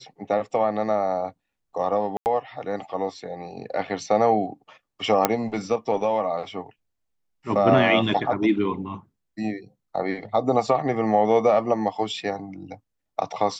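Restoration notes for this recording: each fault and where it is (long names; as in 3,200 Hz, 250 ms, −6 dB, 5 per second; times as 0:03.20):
0:02.17–0:02.26: drop-out 89 ms
0:05.25: click −2 dBFS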